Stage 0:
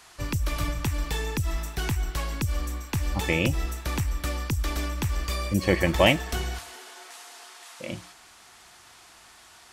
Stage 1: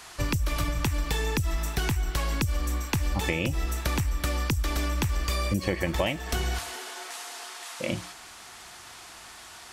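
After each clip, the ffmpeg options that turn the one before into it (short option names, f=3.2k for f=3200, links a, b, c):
-af "acompressor=threshold=-29dB:ratio=12,volume=6dB"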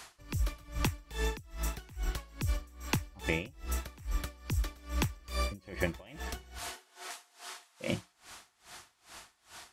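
-af "aeval=exprs='val(0)*pow(10,-26*(0.5-0.5*cos(2*PI*2.4*n/s))/20)':c=same,volume=-2dB"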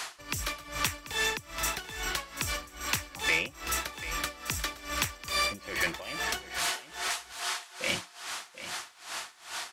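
-filter_complex "[0:a]asplit=2[a][b];[b]highpass=f=720:p=1,volume=20dB,asoftclip=type=tanh:threshold=-13.5dB[c];[a][c]amix=inputs=2:normalize=0,lowpass=f=7.3k:p=1,volume=-6dB,acrossover=split=1200[d][e];[d]asoftclip=type=tanh:threshold=-35dB[f];[f][e]amix=inputs=2:normalize=0,aecho=1:1:738:0.224"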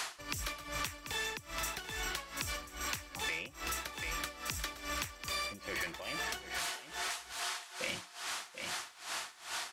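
-af "acompressor=threshold=-35dB:ratio=6"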